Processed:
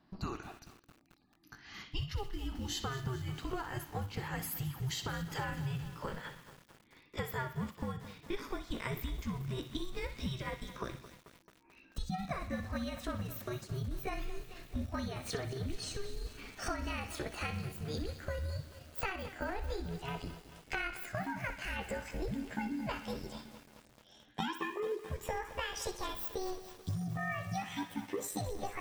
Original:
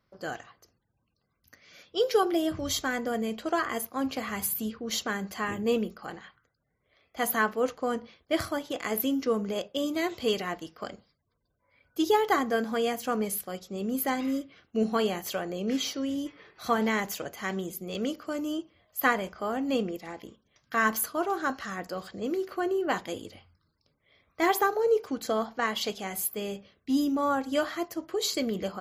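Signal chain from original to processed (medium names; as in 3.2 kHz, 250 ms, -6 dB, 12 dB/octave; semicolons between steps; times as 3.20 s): pitch bend over the whole clip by +12 st starting unshifted; treble shelf 7.4 kHz -11 dB; compression 10:1, threshold -41 dBFS, peak gain reduction 21.5 dB; frequency shift -390 Hz; on a send: band-passed feedback delay 62 ms, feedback 57%, band-pass 2.8 kHz, level -9 dB; on the sum: bit-crushed delay 219 ms, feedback 80%, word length 9-bit, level -13.5 dB; trim +6 dB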